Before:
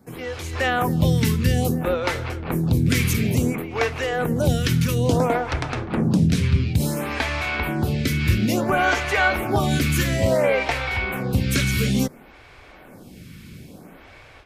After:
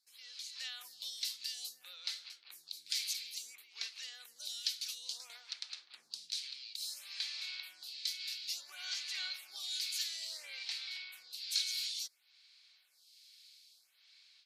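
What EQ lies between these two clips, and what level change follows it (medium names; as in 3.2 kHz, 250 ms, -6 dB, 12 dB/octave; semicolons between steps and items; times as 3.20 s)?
band-pass filter 4.3 kHz, Q 4.5; differentiator; +4.5 dB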